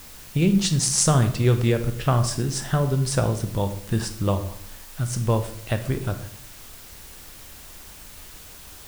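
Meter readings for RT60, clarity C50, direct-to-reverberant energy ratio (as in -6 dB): 0.65 s, 11.5 dB, 8.0 dB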